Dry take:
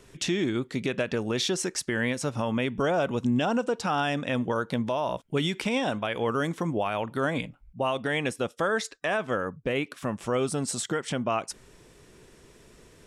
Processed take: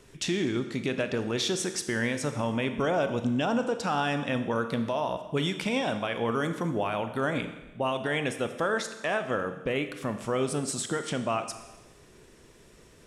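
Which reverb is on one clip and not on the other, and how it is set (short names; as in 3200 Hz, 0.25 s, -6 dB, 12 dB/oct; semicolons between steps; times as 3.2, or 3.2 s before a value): Schroeder reverb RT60 1.1 s, combs from 27 ms, DRR 8.5 dB; gain -1.5 dB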